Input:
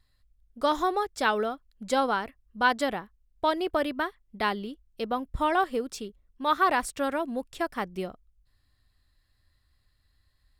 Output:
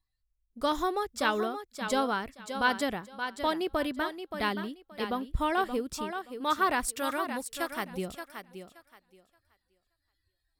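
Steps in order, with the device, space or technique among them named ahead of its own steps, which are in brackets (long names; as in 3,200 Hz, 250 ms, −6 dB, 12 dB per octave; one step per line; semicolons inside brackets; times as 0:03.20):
smiley-face EQ (low-shelf EQ 170 Hz +5 dB; parametric band 740 Hz −3.5 dB 1.7 octaves; high-shelf EQ 9,500 Hz +5.5 dB)
noise reduction from a noise print of the clip's start 18 dB
0:06.88–0:07.91: spectral tilt +2 dB per octave
feedback echo with a high-pass in the loop 575 ms, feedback 21%, high-pass 230 Hz, level −8 dB
level −1.5 dB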